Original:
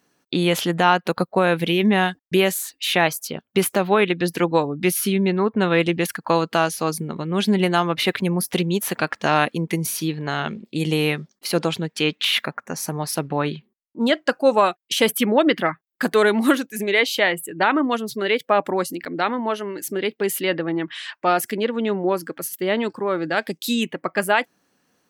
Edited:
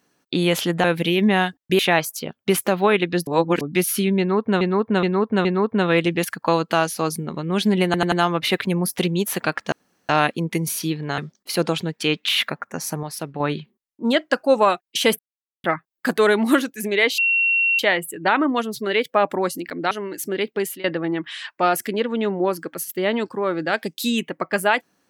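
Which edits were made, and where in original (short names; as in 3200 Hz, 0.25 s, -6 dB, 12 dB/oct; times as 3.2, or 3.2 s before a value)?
0.84–1.46 cut
2.41–2.87 cut
4.35–4.69 reverse
5.27–5.69 loop, 4 plays
7.67 stutter 0.09 s, 4 plays
9.27 insert room tone 0.37 s
10.36–11.14 cut
12.99–13.36 gain -5.5 dB
15.15–15.6 mute
17.14 add tone 2730 Hz -15.5 dBFS 0.61 s
19.26–19.55 cut
20.21–20.48 fade out, to -19.5 dB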